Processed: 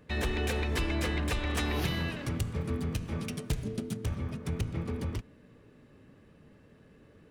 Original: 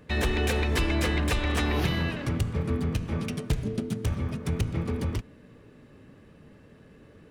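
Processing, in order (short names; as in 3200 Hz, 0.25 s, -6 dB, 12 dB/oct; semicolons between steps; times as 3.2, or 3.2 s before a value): 1.57–3.97 high shelf 4600 Hz +6.5 dB; gain -5 dB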